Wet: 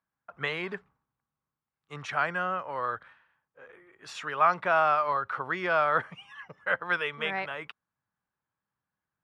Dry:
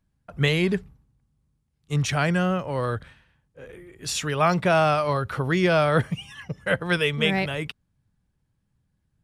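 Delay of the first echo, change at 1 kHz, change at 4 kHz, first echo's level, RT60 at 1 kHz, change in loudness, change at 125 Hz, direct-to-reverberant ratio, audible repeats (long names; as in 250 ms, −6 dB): no echo audible, −0.5 dB, −11.0 dB, no echo audible, no reverb audible, −5.0 dB, −21.0 dB, no reverb audible, no echo audible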